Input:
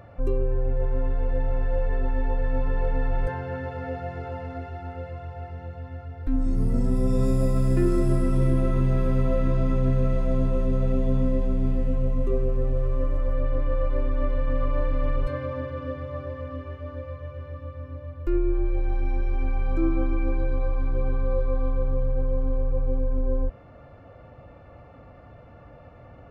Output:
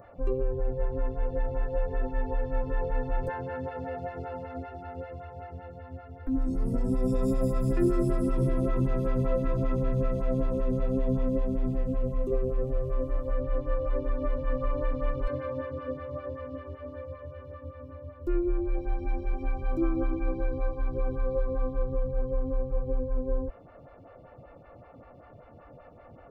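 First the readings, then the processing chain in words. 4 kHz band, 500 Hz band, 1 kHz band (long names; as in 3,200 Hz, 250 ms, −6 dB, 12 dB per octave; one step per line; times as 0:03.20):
can't be measured, −1.5 dB, −2.0 dB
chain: phaser with staggered stages 5.2 Hz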